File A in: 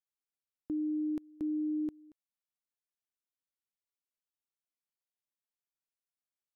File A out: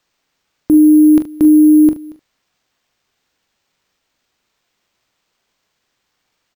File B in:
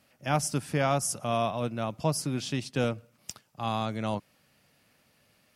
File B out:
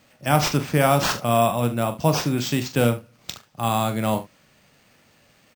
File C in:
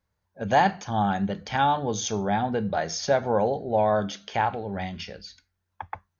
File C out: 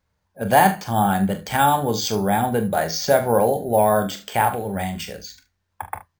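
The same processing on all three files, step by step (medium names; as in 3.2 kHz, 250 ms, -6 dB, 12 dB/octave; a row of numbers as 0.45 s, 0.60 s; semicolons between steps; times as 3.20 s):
careless resampling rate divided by 4×, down none, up hold; early reflections 26 ms -14 dB, 42 ms -10.5 dB, 74 ms -16.5 dB; peak normalisation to -3 dBFS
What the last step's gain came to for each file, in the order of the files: +24.0 dB, +7.5 dB, +5.0 dB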